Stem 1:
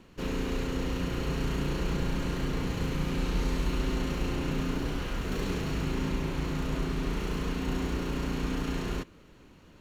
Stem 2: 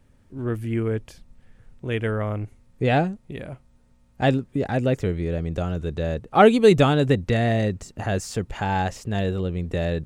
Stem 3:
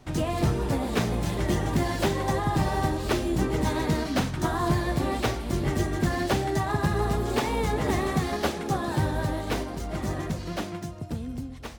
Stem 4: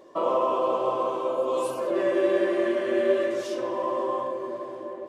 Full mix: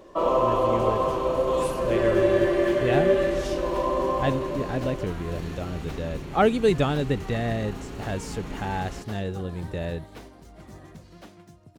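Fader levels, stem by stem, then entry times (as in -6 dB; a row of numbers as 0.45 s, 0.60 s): -6.5 dB, -6.0 dB, -15.0 dB, +2.0 dB; 0.00 s, 0.00 s, 0.65 s, 0.00 s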